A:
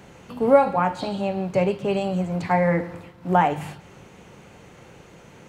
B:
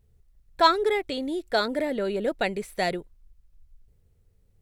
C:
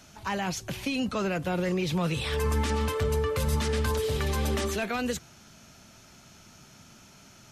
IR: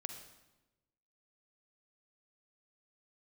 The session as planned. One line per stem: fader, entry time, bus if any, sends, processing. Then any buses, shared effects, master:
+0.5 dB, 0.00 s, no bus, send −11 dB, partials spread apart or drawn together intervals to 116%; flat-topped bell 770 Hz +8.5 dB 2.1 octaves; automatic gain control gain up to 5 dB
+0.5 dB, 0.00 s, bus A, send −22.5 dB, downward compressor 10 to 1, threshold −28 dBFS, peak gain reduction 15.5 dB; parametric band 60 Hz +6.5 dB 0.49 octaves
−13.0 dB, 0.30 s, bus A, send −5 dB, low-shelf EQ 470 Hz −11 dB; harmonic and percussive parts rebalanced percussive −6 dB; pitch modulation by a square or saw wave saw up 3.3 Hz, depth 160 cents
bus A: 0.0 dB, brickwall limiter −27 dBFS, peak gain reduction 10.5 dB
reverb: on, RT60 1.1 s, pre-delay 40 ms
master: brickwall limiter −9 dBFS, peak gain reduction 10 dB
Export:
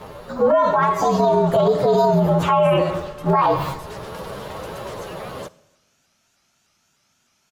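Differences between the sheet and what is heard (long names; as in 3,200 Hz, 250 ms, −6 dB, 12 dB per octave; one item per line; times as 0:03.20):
stem A +0.5 dB → +7.5 dB
stem B +0.5 dB → +7.0 dB
stem C: missing harmonic and percussive parts rebalanced percussive −6 dB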